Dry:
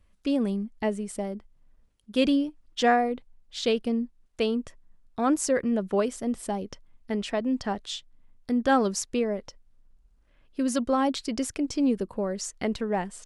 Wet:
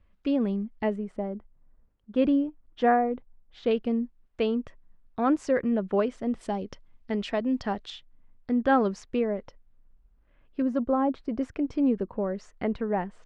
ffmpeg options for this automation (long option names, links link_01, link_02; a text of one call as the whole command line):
ffmpeg -i in.wav -af "asetnsamples=nb_out_samples=441:pad=0,asendcmd='0.96 lowpass f 1500;3.71 lowpass f 2700;6.41 lowpass f 4400;7.9 lowpass f 2400;10.62 lowpass f 1100;11.41 lowpass f 1900',lowpass=2800" out.wav